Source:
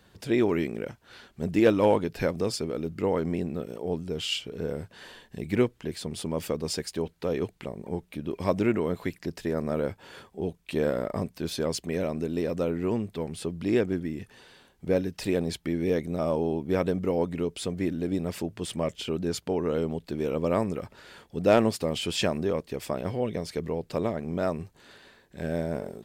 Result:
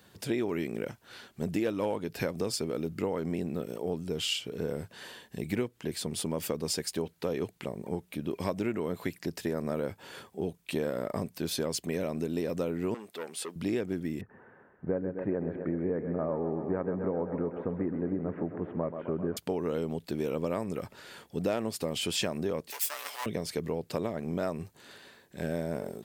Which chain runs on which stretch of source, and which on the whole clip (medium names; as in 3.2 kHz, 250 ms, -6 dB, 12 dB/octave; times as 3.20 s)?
12.94–13.56 s: high-pass 450 Hz + transformer saturation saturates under 1.2 kHz
14.21–19.37 s: steep low-pass 1.7 kHz + thinning echo 130 ms, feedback 75%, high-pass 210 Hz, level -9.5 dB
22.70–23.26 s: comb filter that takes the minimum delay 6.9 ms + high-pass 800 Hz + tilt EQ +4 dB/octave
whole clip: high-pass 89 Hz; treble shelf 8.3 kHz +8.5 dB; compression 6:1, threshold -27 dBFS